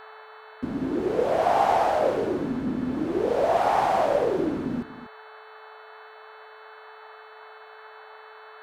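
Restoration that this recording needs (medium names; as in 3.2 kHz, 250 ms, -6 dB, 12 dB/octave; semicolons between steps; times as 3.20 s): de-hum 435.4 Hz, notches 10; noise print and reduce 24 dB; inverse comb 241 ms -14.5 dB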